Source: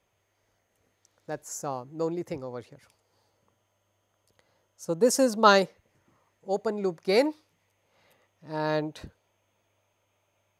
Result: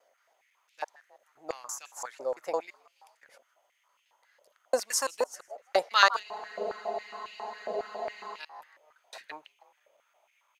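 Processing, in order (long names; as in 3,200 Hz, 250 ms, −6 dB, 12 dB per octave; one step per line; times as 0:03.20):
slices reordered back to front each 169 ms, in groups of 4
echo with shifted repeats 159 ms, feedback 43%, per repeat +100 Hz, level −23.5 dB
frozen spectrum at 0:06.24, 2.15 s
high-pass on a step sequencer 7.3 Hz 570–2,600 Hz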